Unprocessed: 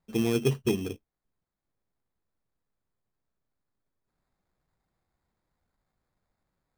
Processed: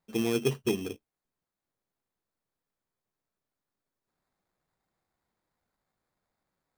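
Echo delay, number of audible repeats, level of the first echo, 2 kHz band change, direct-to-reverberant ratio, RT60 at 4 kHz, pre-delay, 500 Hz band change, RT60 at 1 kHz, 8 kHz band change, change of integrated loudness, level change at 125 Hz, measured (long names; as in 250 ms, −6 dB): no echo audible, no echo audible, no echo audible, 0.0 dB, no reverb audible, no reverb audible, no reverb audible, −1.0 dB, no reverb audible, 0.0 dB, −2.0 dB, −5.5 dB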